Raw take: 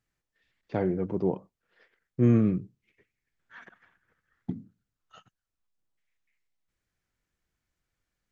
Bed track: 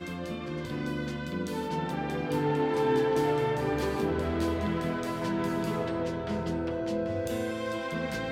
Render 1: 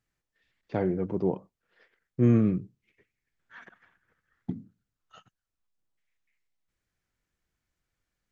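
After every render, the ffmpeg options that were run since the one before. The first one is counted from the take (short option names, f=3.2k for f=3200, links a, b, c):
-af anull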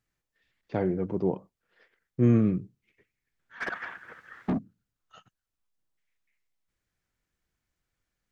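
-filter_complex "[0:a]asplit=3[a][b][c];[a]afade=t=out:st=3.6:d=0.02[d];[b]asplit=2[e][f];[f]highpass=f=720:p=1,volume=36dB,asoftclip=type=tanh:threshold=-18.5dB[g];[e][g]amix=inputs=2:normalize=0,lowpass=f=1.5k:p=1,volume=-6dB,afade=t=in:st=3.6:d=0.02,afade=t=out:st=4.57:d=0.02[h];[c]afade=t=in:st=4.57:d=0.02[i];[d][h][i]amix=inputs=3:normalize=0"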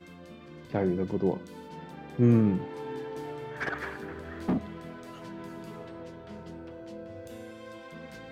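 -filter_complex "[1:a]volume=-12dB[a];[0:a][a]amix=inputs=2:normalize=0"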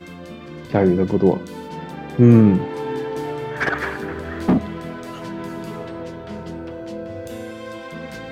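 -af "volume=11.5dB,alimiter=limit=-2dB:level=0:latency=1"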